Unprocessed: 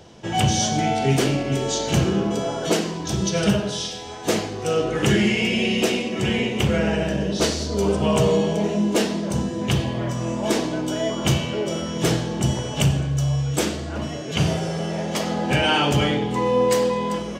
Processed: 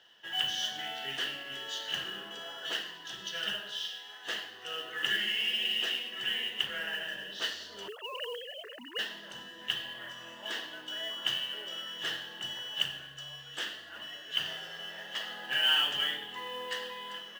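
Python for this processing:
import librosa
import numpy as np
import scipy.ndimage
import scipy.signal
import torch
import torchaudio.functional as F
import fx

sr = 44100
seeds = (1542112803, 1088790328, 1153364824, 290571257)

y = fx.sine_speech(x, sr, at=(7.88, 8.99))
y = fx.double_bandpass(y, sr, hz=2300.0, octaves=0.72)
y = fx.mod_noise(y, sr, seeds[0], snr_db=22)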